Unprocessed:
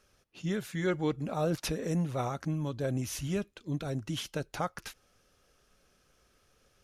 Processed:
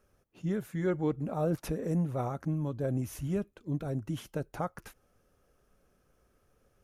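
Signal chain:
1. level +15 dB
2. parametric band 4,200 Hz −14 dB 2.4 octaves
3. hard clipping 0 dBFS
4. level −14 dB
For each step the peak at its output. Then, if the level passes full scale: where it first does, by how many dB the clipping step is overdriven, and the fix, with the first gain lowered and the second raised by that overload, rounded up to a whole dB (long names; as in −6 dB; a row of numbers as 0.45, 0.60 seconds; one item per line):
−4.0, −6.0, −6.0, −20.0 dBFS
no step passes full scale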